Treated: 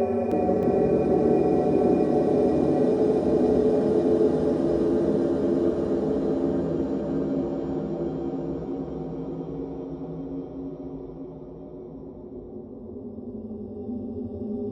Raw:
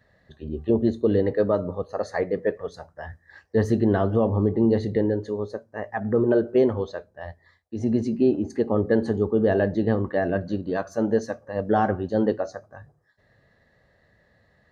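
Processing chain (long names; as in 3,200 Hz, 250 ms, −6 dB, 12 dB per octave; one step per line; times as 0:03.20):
partials spread apart or drawn together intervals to 125%
high-pass filter 210 Hz 6 dB per octave
low-pass that shuts in the quiet parts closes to 470 Hz, open at −17.5 dBFS
parametric band 2,700 Hz −8 dB 0.92 octaves
low-pass that shuts in the quiet parts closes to 420 Hz, open at −18.5 dBFS
extreme stretch with random phases 9.7×, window 1.00 s, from 0:06.25
delay with pitch and tempo change per echo 315 ms, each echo −4 semitones, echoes 2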